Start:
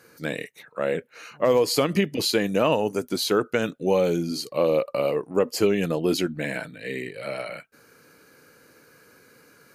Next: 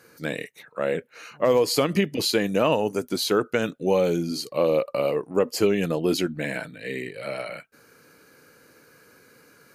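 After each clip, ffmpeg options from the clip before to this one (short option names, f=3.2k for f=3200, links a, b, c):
-af anull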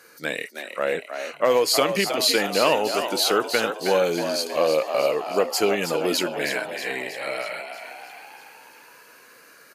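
-filter_complex "[0:a]highpass=f=710:p=1,asplit=8[a][b][c][d][e][f][g][h];[b]adelay=318,afreqshift=74,volume=-8dB[i];[c]adelay=636,afreqshift=148,volume=-12.6dB[j];[d]adelay=954,afreqshift=222,volume=-17.2dB[k];[e]adelay=1272,afreqshift=296,volume=-21.7dB[l];[f]adelay=1590,afreqshift=370,volume=-26.3dB[m];[g]adelay=1908,afreqshift=444,volume=-30.9dB[n];[h]adelay=2226,afreqshift=518,volume=-35.5dB[o];[a][i][j][k][l][m][n][o]amix=inputs=8:normalize=0,volume=5dB"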